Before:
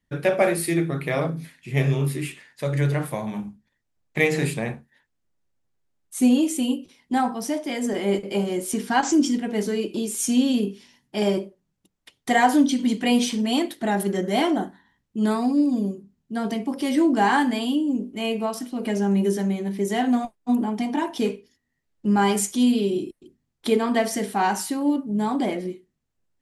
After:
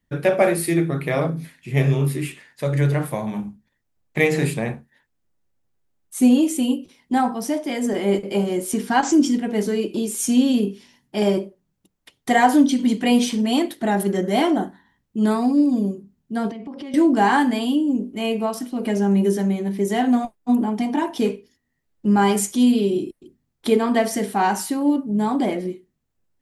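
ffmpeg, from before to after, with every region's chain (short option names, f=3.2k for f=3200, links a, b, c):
-filter_complex "[0:a]asettb=1/sr,asplit=3[a][b][c];[a]atrim=end=16.504[d];[b]atrim=start=16.5:end=16.94,asetpts=PTS-STARTPTS,afade=t=in:d=0.004:c=qsin,afade=t=out:st=0.436:d=0.004:c=qsin,lowpass=3.7k,acompressor=threshold=-33dB:ratio=10:attack=3.2:release=140:knee=1:detection=peak[e];[c]atrim=start=16.936[f];[d][e]acrossfade=d=0.004:c1=hsin:c2=qsin[g];[g][f]acrossfade=d=0.004:c1=qsin:c2=hsin,lowpass=f=1.4k:p=1,aemphasis=mode=production:type=75fm,volume=4dB"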